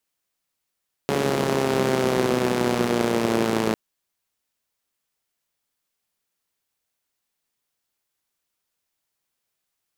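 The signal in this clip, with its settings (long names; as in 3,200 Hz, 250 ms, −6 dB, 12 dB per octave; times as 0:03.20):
pulse-train model of a four-cylinder engine, changing speed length 2.65 s, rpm 4,200, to 3,300, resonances 220/370 Hz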